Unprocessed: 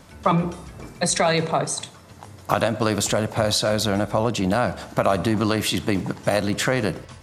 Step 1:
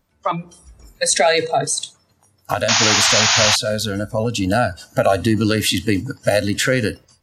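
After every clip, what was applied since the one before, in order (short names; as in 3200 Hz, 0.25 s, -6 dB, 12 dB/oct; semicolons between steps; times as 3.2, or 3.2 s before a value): spectral noise reduction 20 dB; painted sound noise, 2.68–3.56, 640–7000 Hz -17 dBFS; AGC; gain -1 dB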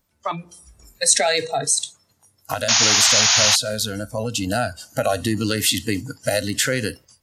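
high shelf 4000 Hz +10 dB; gain -5.5 dB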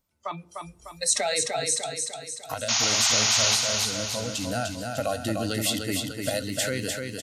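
notch 1700 Hz, Q 10; on a send: feedback echo 0.3 s, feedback 51%, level -4.5 dB; on the sum: gain -7.5 dB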